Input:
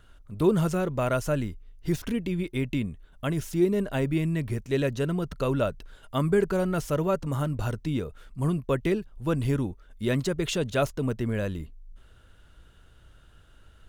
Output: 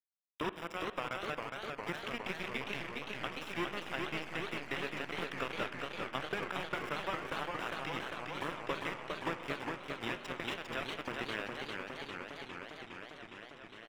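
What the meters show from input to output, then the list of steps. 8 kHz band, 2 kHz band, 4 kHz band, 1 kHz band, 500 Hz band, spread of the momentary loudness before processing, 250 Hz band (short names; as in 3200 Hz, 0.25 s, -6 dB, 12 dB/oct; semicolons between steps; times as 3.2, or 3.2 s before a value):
-13.0 dB, -0.5 dB, -1.5 dB, -3.0 dB, -13.5 dB, 8 LU, -16.5 dB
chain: HPF 280 Hz 24 dB/oct; bell 420 Hz -14.5 dB 2.5 oct; compressor 10:1, threshold -44 dBFS, peak gain reduction 16 dB; bit-crush 7-bit; polynomial smoothing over 25 samples; echo 0.13 s -21.5 dB; spring tank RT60 1.9 s, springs 46/54/60 ms, chirp 55 ms, DRR 13.5 dB; warbling echo 0.406 s, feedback 79%, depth 171 cents, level -4 dB; gain +9.5 dB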